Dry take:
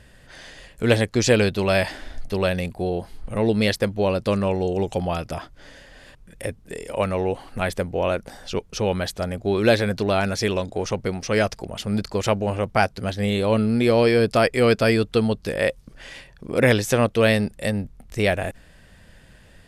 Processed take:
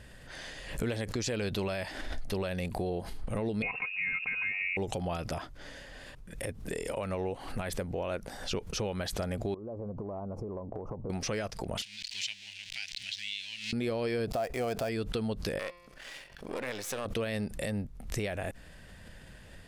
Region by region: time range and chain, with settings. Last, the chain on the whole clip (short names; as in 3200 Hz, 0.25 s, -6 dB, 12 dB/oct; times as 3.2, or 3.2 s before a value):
3.62–4.77 HPF 50 Hz + comb 3.6 ms, depth 95% + inverted band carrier 2700 Hz
9.54–11.1 elliptic low-pass 1100 Hz + compressor 16:1, threshold -33 dBFS
11.82–13.73 zero-crossing step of -24.5 dBFS + inverse Chebyshev high-pass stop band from 1300 Hz + air absorption 130 m
14.27–14.89 switching dead time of 0.071 ms + expander -38 dBFS + bell 710 Hz +14 dB 0.42 oct
15.59–17.06 half-wave gain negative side -12 dB + low shelf 260 Hz -11 dB + de-hum 174.8 Hz, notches 32
whole clip: compressor 4:1, threshold -29 dBFS; limiter -22.5 dBFS; backwards sustainer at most 83 dB/s; gain -1.5 dB